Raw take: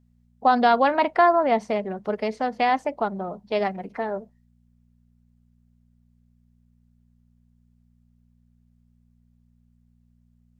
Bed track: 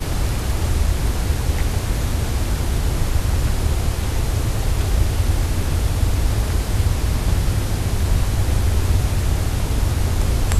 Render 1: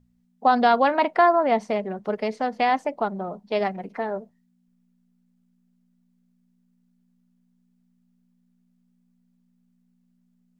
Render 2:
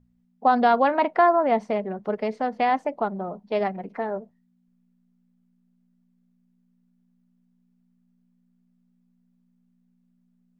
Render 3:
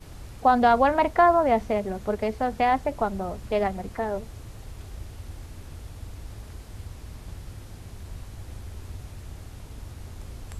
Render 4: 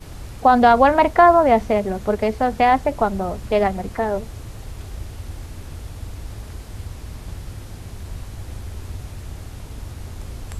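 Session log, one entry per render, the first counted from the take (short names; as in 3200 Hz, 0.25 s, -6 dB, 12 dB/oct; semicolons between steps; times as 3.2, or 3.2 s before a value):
de-hum 60 Hz, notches 2
high shelf 3500 Hz -10.5 dB
add bed track -21 dB
gain +6.5 dB; limiter -3 dBFS, peak gain reduction 2 dB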